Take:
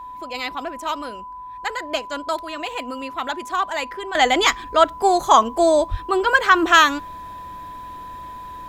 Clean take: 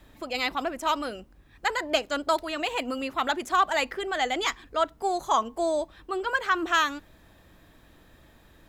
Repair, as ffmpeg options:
-filter_complex "[0:a]bandreject=f=1k:w=30,asplit=3[a][b][c];[a]afade=t=out:st=5.9:d=0.02[d];[b]highpass=f=140:w=0.5412,highpass=f=140:w=1.3066,afade=t=in:st=5.9:d=0.02,afade=t=out:st=6.02:d=0.02[e];[c]afade=t=in:st=6.02:d=0.02[f];[d][e][f]amix=inputs=3:normalize=0,asetnsamples=n=441:p=0,asendcmd='4.15 volume volume -10.5dB',volume=0dB"

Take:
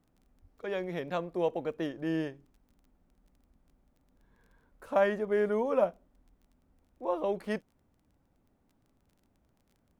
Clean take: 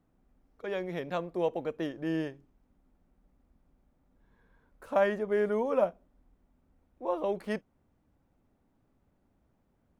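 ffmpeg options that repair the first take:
-filter_complex "[0:a]adeclick=t=4,asplit=3[a][b][c];[a]afade=t=out:st=0.41:d=0.02[d];[b]highpass=f=140:w=0.5412,highpass=f=140:w=1.3066,afade=t=in:st=0.41:d=0.02,afade=t=out:st=0.53:d=0.02[e];[c]afade=t=in:st=0.53:d=0.02[f];[d][e][f]amix=inputs=3:normalize=0"

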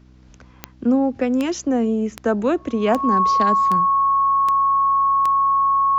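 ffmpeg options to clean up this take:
-af "adeclick=t=4,bandreject=f=63.1:t=h:w=4,bandreject=f=126.2:t=h:w=4,bandreject=f=189.3:t=h:w=4,bandreject=f=252.4:t=h:w=4,bandreject=f=315.5:t=h:w=4,bandreject=f=1.1k:w=30"

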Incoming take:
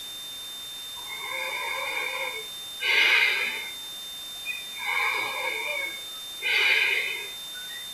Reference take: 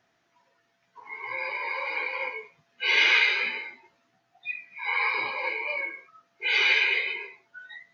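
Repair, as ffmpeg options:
-af "bandreject=f=3.6k:w=30,afwtdn=0.0079"

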